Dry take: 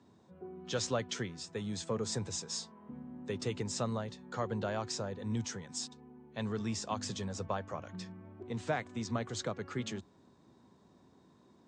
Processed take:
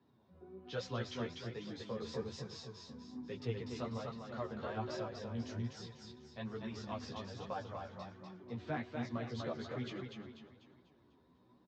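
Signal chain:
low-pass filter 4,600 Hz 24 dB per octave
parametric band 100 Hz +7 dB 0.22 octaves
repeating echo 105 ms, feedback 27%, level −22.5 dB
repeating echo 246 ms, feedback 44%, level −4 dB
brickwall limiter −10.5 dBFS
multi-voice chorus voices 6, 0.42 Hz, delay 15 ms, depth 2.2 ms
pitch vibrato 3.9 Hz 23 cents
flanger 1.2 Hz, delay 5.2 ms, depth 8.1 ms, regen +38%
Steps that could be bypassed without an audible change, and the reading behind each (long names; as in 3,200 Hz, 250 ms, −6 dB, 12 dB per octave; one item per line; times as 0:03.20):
brickwall limiter −10.5 dBFS: peak of its input −20.0 dBFS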